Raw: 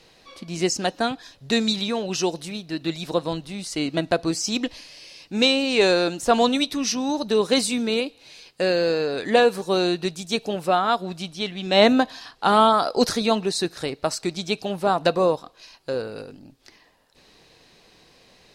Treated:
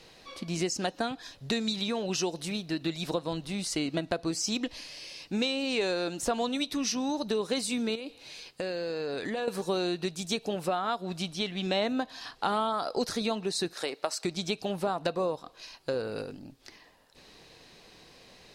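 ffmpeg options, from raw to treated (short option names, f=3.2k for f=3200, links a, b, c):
-filter_complex "[0:a]asettb=1/sr,asplit=3[a][b][c];[a]atrim=end=7.954[d];[b]atrim=start=7.95:end=9.48,asetpts=PTS-STARTPTS,afade=t=in:d=0.004:c=qsin,afade=t=out:st=1.526:d=0.004:c=qsin,acompressor=threshold=-30dB:ratio=6:attack=3.2:release=140:knee=1:detection=peak[e];[c]atrim=start=9.476[f];[d][e]acrossfade=d=0.004:c1=hsin:c2=qsin[g];[g][f]acrossfade=d=0.004:c1=qsin:c2=hsin,asettb=1/sr,asplit=3[h][i][j];[h]atrim=end=13.734[k];[i]atrim=start=13.73:end=14.25,asetpts=PTS-STARTPTS,afade=t=in:d=0.004:c=qsin,afade=t=out:st=0.516:d=0.004:c=qsin,highpass=420[l];[j]atrim=start=14.246[m];[k][l]acrossfade=d=0.004:c1=hsin:c2=qsin[n];[n][m]acrossfade=d=0.004:c1=qsin:c2=hsin,acompressor=threshold=-28dB:ratio=4"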